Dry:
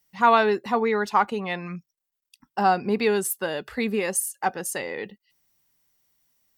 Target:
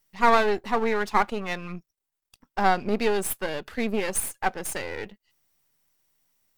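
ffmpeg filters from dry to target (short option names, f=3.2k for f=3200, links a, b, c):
-af "aeval=exprs='if(lt(val(0),0),0.251*val(0),val(0))':c=same,volume=1.5dB"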